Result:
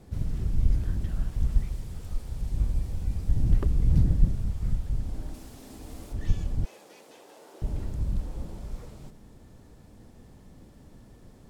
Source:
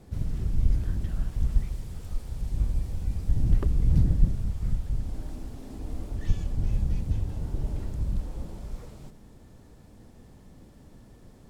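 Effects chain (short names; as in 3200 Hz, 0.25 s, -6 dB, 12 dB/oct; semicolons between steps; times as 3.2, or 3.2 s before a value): 5.34–6.13 tilt +2 dB/oct; 6.65–7.62 HPF 420 Hz 24 dB/oct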